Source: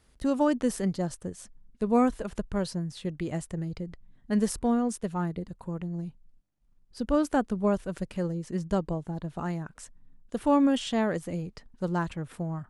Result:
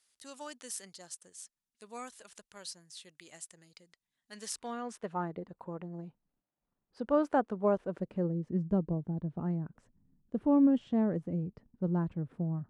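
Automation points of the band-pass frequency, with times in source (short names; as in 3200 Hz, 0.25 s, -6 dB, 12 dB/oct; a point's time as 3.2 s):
band-pass, Q 0.71
4.31 s 7700 Hz
4.85 s 2000 Hz
5.17 s 740 Hz
7.59 s 740 Hz
8.53 s 190 Hz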